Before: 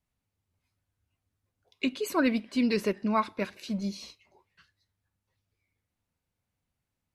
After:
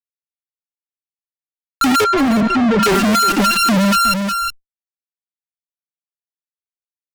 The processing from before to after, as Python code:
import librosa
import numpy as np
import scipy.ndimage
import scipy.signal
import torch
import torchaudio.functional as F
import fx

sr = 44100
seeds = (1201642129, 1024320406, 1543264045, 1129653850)

y = np.r_[np.sort(x[:len(x) // 32 * 32].reshape(-1, 32), axis=1).ravel(), x[len(x) // 32 * 32:]]
y = fx.low_shelf(y, sr, hz=150.0, db=-7.0)
y = fx.leveller(y, sr, passes=5)
y = np.clip(10.0 ** (24.0 / 20.0) * y, -1.0, 1.0) / 10.0 ** (24.0 / 20.0)
y = fx.spec_topn(y, sr, count=4)
y = fx.fuzz(y, sr, gain_db=62.0, gate_db=-56.0)
y = fx.spacing_loss(y, sr, db_at_10k=26, at=(2.04, 2.83))
y = y + 10.0 ** (-12.0 / 20.0) * np.pad(y, (int(364 * sr / 1000.0), 0))[:len(y)]
y = fx.env_flatten(y, sr, amount_pct=50)